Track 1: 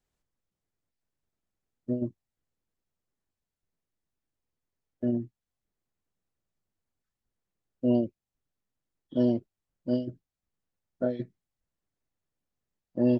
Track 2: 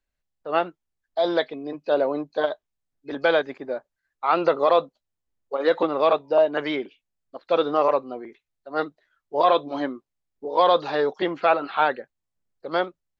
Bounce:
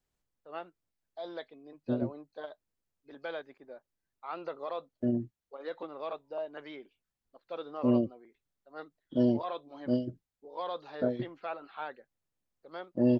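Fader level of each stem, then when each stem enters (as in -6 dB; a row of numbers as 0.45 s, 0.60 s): -1.5 dB, -19.0 dB; 0.00 s, 0.00 s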